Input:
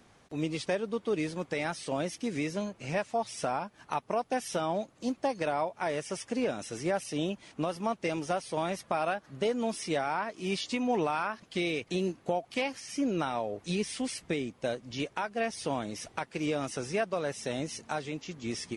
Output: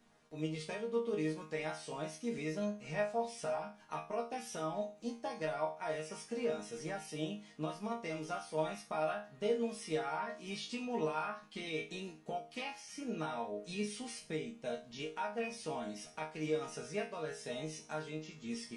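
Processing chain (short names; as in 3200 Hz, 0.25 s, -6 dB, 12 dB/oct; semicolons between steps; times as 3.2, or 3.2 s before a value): resonator bank D#3 sus4, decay 0.36 s; gain +8.5 dB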